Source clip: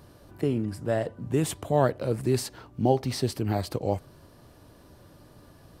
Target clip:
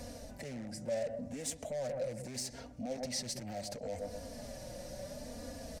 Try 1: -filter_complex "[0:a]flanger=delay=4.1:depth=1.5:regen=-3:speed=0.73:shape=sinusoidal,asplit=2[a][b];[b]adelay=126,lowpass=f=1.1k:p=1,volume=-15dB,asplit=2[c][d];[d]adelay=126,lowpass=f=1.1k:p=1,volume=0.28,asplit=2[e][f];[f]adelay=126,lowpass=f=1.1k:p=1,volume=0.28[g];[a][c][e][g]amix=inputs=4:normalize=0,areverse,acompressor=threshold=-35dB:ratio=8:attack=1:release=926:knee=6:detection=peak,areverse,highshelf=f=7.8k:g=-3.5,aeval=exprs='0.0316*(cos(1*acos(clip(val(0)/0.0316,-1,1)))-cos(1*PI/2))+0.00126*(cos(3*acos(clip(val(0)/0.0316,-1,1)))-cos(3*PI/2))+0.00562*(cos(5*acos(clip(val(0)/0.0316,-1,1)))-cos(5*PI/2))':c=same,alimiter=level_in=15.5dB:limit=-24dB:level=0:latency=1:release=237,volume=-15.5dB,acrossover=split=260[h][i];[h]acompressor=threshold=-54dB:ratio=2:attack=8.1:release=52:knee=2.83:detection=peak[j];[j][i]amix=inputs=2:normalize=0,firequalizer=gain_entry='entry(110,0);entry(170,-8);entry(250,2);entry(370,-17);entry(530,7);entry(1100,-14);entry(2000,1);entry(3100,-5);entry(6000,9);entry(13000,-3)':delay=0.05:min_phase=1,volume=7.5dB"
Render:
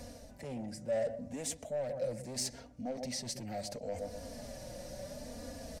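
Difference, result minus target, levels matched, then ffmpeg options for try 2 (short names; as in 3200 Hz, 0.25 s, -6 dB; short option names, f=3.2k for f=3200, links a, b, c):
compressor: peak gain reduction +5 dB
-filter_complex "[0:a]flanger=delay=4.1:depth=1.5:regen=-3:speed=0.73:shape=sinusoidal,asplit=2[a][b];[b]adelay=126,lowpass=f=1.1k:p=1,volume=-15dB,asplit=2[c][d];[d]adelay=126,lowpass=f=1.1k:p=1,volume=0.28,asplit=2[e][f];[f]adelay=126,lowpass=f=1.1k:p=1,volume=0.28[g];[a][c][e][g]amix=inputs=4:normalize=0,areverse,acompressor=threshold=-29dB:ratio=8:attack=1:release=926:knee=6:detection=peak,areverse,highshelf=f=7.8k:g=-3.5,aeval=exprs='0.0316*(cos(1*acos(clip(val(0)/0.0316,-1,1)))-cos(1*PI/2))+0.00126*(cos(3*acos(clip(val(0)/0.0316,-1,1)))-cos(3*PI/2))+0.00562*(cos(5*acos(clip(val(0)/0.0316,-1,1)))-cos(5*PI/2))':c=same,alimiter=level_in=15.5dB:limit=-24dB:level=0:latency=1:release=237,volume=-15.5dB,acrossover=split=260[h][i];[h]acompressor=threshold=-54dB:ratio=2:attack=8.1:release=52:knee=2.83:detection=peak[j];[j][i]amix=inputs=2:normalize=0,firequalizer=gain_entry='entry(110,0);entry(170,-8);entry(250,2);entry(370,-17);entry(530,7);entry(1100,-14);entry(2000,1);entry(3100,-5);entry(6000,9);entry(13000,-3)':delay=0.05:min_phase=1,volume=7.5dB"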